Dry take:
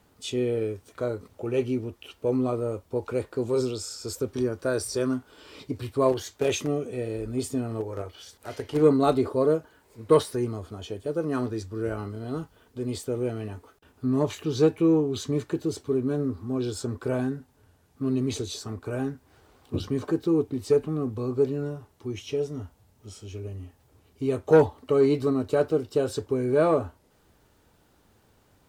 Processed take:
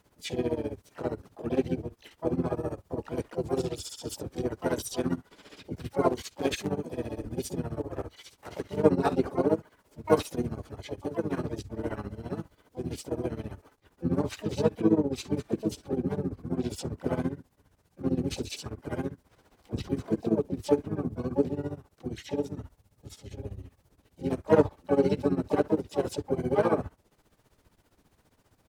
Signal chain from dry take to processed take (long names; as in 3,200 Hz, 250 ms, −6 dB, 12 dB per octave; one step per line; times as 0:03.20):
amplitude tremolo 15 Hz, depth 92%
pitch-shifted copies added −7 semitones −3 dB, +5 semitones −7 dB, +12 semitones −16 dB
level −2 dB